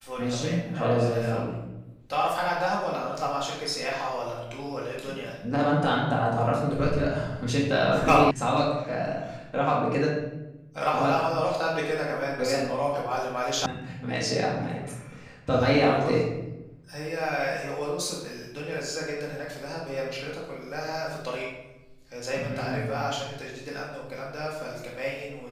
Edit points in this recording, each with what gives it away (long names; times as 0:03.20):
0:08.31: cut off before it has died away
0:13.66: cut off before it has died away